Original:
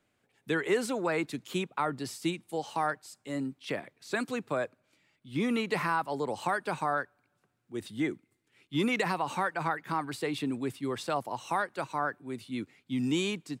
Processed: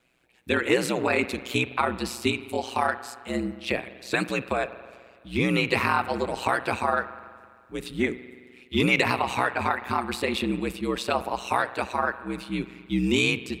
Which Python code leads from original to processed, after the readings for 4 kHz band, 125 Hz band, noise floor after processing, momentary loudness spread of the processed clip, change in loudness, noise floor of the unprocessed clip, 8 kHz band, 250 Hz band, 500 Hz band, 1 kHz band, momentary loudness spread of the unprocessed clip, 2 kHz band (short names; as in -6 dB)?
+8.5 dB, +6.5 dB, -55 dBFS, 10 LU, +6.5 dB, -76 dBFS, +5.5 dB, +4.5 dB, +5.5 dB, +5.0 dB, 9 LU, +8.0 dB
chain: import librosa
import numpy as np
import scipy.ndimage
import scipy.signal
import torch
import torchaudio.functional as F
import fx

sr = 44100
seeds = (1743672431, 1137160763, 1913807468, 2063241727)

y = fx.graphic_eq_31(x, sr, hz=(2500, 4000, 12500), db=(9, 4, 3))
y = fx.rev_spring(y, sr, rt60_s=1.9, pass_ms=(42,), chirp_ms=40, drr_db=13.0)
y = y * np.sin(2.0 * np.pi * 62.0 * np.arange(len(y)) / sr)
y = y * librosa.db_to_amplitude(8.0)